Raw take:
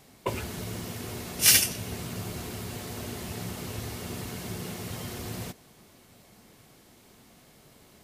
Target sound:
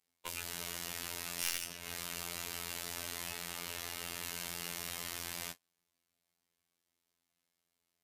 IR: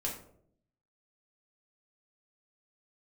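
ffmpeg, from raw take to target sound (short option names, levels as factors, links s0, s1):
-filter_complex "[0:a]aeval=exprs='clip(val(0),-1,0.0447)':c=same,asettb=1/sr,asplit=3[s0][s1][s2];[s0]atrim=end=3.324[s3];[s1]atrim=start=3.32:end=4.24,asetpts=PTS-STARTPTS,afade=t=in:d=0.004:c=qsin,afade=t=out:st=0.916:d=0.004:c=qsin,bass=f=250:g=-4,treble=f=4000:g=-4[s4];[s2]atrim=start=4.236[s5];[s3][s4]acrossfade=d=0.004:c1=hsin:c2=qsin[s6];[s6][s5]acrossfade=d=0.004:c1=qsin:c2=hsin,acrossover=split=260|580|2900|7600[s7][s8][s9][s10][s11];[s7]acompressor=threshold=0.00398:ratio=4[s12];[s8]acompressor=threshold=0.00178:ratio=4[s13];[s9]acompressor=threshold=0.00501:ratio=4[s14];[s10]acompressor=threshold=0.00251:ratio=4[s15];[s11]acompressor=threshold=0.00316:ratio=4[s16];[s12][s13][s14][s15][s16]amix=inputs=5:normalize=0,tiltshelf=f=970:g=-6.5,agate=range=0.0316:threshold=0.00631:ratio=16:detection=peak,afftfilt=real='hypot(re,im)*cos(PI*b)':imag='0':win_size=2048:overlap=0.75,volume=1.26"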